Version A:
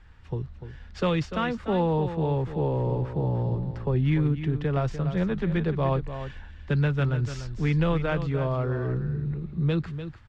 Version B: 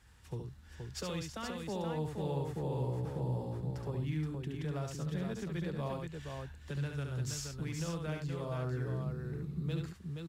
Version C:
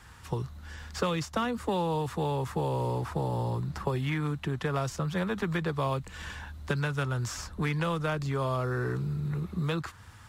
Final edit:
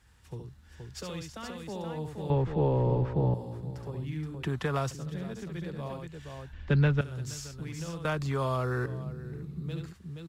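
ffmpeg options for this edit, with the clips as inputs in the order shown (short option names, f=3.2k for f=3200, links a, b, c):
-filter_complex "[0:a]asplit=2[a][b];[2:a]asplit=2[c][d];[1:a]asplit=5[e][f][g][h][i];[e]atrim=end=2.302[j];[a]atrim=start=2.298:end=3.342[k];[f]atrim=start=3.338:end=4.432[l];[c]atrim=start=4.428:end=4.912[m];[g]atrim=start=4.908:end=6.532[n];[b]atrim=start=6.528:end=7.012[o];[h]atrim=start=7.008:end=8.052[p];[d]atrim=start=8.048:end=8.862[q];[i]atrim=start=8.858[r];[j][k]acrossfade=d=0.004:c1=hsin:c2=hsin[s];[s][l]acrossfade=d=0.004:c1=hsin:c2=hsin[t];[t][m]acrossfade=d=0.004:c1=hsin:c2=hsin[u];[u][n]acrossfade=d=0.004:c1=hsin:c2=hsin[v];[v][o]acrossfade=d=0.004:c1=hsin:c2=hsin[w];[w][p]acrossfade=d=0.004:c1=hsin:c2=hsin[x];[x][q]acrossfade=d=0.004:c1=hsin:c2=hsin[y];[y][r]acrossfade=d=0.004:c1=hsin:c2=hsin"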